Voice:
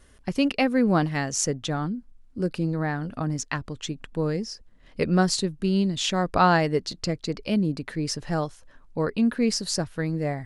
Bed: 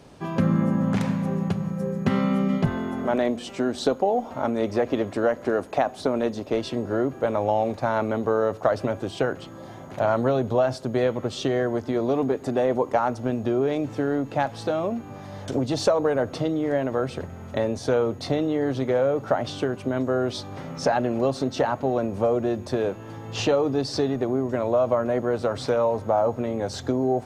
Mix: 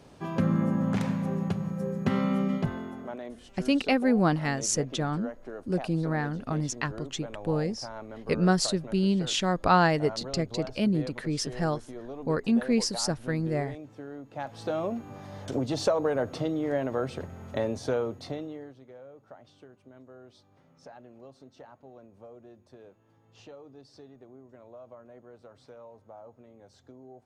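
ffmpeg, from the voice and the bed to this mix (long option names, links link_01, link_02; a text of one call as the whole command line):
ffmpeg -i stem1.wav -i stem2.wav -filter_complex "[0:a]adelay=3300,volume=-2dB[link_01];[1:a]volume=8.5dB,afade=type=out:start_time=2.42:duration=0.76:silence=0.223872,afade=type=in:start_time=14.3:duration=0.47:silence=0.237137,afade=type=out:start_time=17.74:duration=1.01:silence=0.0794328[link_02];[link_01][link_02]amix=inputs=2:normalize=0" out.wav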